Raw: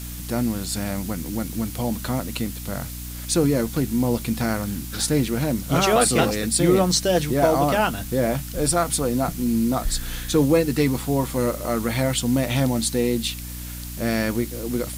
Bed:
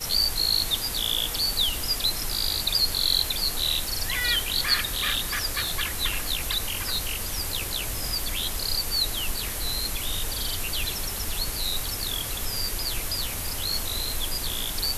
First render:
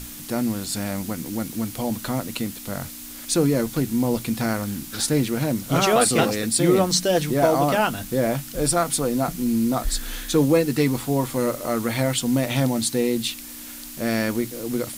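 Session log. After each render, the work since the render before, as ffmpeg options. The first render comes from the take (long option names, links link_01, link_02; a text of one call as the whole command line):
ffmpeg -i in.wav -af "bandreject=frequency=60:width_type=h:width=6,bandreject=frequency=120:width_type=h:width=6,bandreject=frequency=180:width_type=h:width=6" out.wav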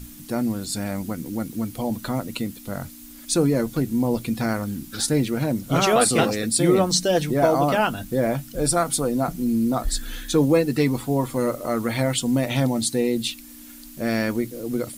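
ffmpeg -i in.wav -af "afftdn=noise_reduction=9:noise_floor=-38" out.wav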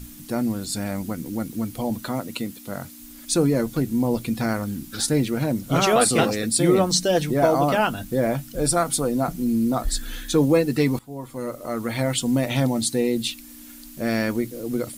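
ffmpeg -i in.wav -filter_complex "[0:a]asettb=1/sr,asplit=3[link_01][link_02][link_03];[link_01]atrim=end=2.024[link_04];[link_02]atrim=start=2.02:end=2.99,asetpts=PTS-STARTPTS,afade=type=in:duration=0.004:curve=qsin,afade=type=out:start_time=0.966:duration=0.004:curve=qsin,highpass=frequency=150:poles=1[link_05];[link_03]atrim=start=2.986[link_06];[link_04][link_05]acrossfade=duration=0.004:curve1=hsin:curve2=qsin[link_07];[link_07][link_06]acrossfade=duration=0.004:curve1=qsin:curve2=hsin,asplit=2[link_08][link_09];[link_08]atrim=end=10.99,asetpts=PTS-STARTPTS,afade=type=out:start_time=10.986:duration=0.004:curve=hsin:silence=0.112202[link_10];[link_09]atrim=start=10.99,asetpts=PTS-STARTPTS,afade=type=in:duration=1.22:silence=0.112202[link_11];[link_10][link_11]concat=n=2:v=0:a=1" out.wav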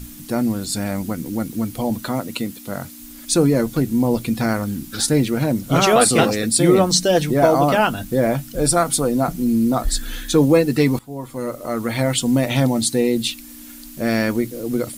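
ffmpeg -i in.wav -af "volume=4dB" out.wav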